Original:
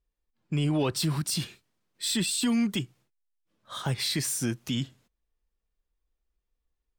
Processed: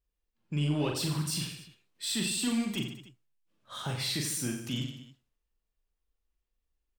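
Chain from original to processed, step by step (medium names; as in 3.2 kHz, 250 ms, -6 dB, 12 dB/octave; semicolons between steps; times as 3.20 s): peaking EQ 2.8 kHz +3.5 dB 0.31 oct; in parallel at -9 dB: saturation -31.5 dBFS, distortion -8 dB; on the sum: reverse bouncing-ball echo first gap 40 ms, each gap 1.2×, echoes 5; trim -7 dB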